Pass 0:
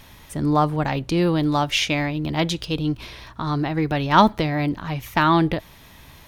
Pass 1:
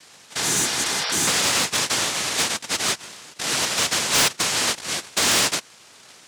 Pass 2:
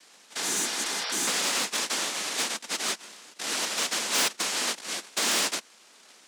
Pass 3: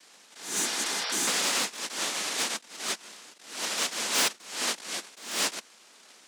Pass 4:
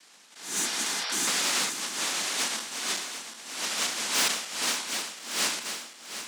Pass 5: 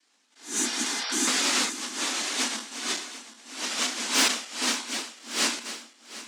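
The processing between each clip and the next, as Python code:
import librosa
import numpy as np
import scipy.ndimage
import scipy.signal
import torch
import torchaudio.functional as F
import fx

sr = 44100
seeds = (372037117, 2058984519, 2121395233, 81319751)

y1 = fx.noise_vocoder(x, sr, seeds[0], bands=1)
y1 = fx.spec_repair(y1, sr, seeds[1], start_s=0.43, length_s=0.82, low_hz=450.0, high_hz=5800.0, source='before')
y1 = np.clip(y1, -10.0 ** (-15.0 / 20.0), 10.0 ** (-15.0 / 20.0))
y2 = scipy.signal.sosfilt(scipy.signal.butter(6, 190.0, 'highpass', fs=sr, output='sos'), y1)
y2 = y2 * 10.0 ** (-6.5 / 20.0)
y3 = fx.attack_slew(y2, sr, db_per_s=100.0)
y4 = fx.reverse_delay_fb(y3, sr, ms=371, feedback_pct=71, wet_db=-9)
y4 = fx.peak_eq(y4, sr, hz=490.0, db=-4.0, octaves=1.1)
y4 = fx.sustainer(y4, sr, db_per_s=74.0)
y5 = fx.low_shelf_res(y4, sr, hz=190.0, db=-8.0, q=3.0)
y5 = fx.spectral_expand(y5, sr, expansion=1.5)
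y5 = y5 * 10.0 ** (3.5 / 20.0)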